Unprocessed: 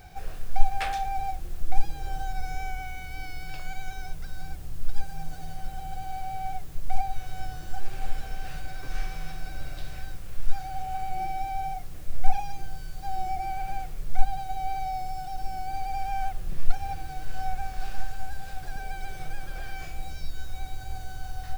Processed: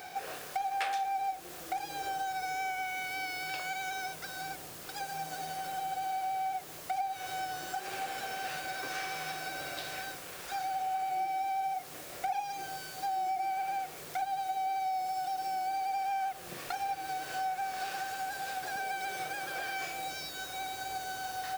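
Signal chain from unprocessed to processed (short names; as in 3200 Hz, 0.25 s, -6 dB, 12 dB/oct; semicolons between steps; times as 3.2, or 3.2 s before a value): HPF 380 Hz 12 dB/oct; compressor 3:1, threshold -41 dBFS, peak gain reduction 11 dB; gain +7.5 dB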